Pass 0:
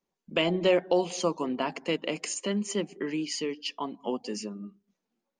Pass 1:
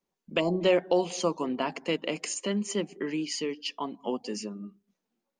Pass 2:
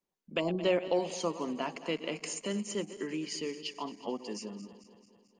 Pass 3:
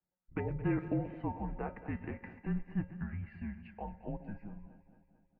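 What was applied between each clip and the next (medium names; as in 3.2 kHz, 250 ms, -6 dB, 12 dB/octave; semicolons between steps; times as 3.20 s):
time-frequency box 0.40–0.61 s, 1.2–4.1 kHz -22 dB
backward echo that repeats 110 ms, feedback 75%, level -14 dB; trim -5 dB
mistuned SSB -220 Hz 190–2100 Hz; feedback comb 180 Hz, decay 0.29 s, harmonics odd, mix 80%; speakerphone echo 130 ms, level -24 dB; trim +8.5 dB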